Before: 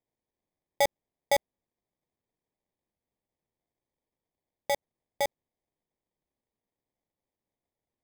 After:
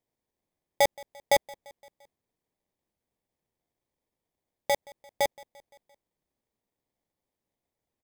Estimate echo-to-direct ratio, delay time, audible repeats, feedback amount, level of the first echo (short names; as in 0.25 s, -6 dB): -21.5 dB, 0.172 s, 3, 58%, -23.0 dB